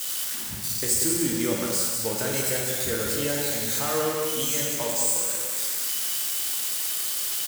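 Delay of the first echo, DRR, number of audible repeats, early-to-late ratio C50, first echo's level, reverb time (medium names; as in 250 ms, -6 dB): 188 ms, -2.5 dB, 1, -0.5 dB, -6.5 dB, 1.5 s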